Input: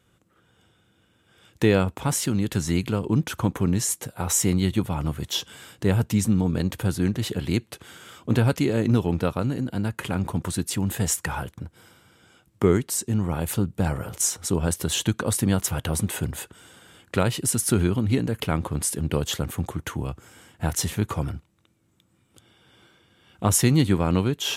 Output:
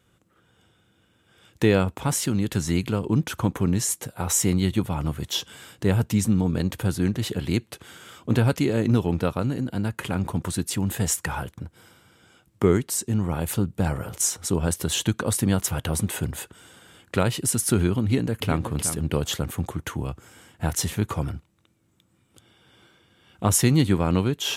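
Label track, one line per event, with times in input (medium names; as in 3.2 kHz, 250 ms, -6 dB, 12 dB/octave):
18.040000	18.610000	echo throw 370 ms, feedback 10%, level -10 dB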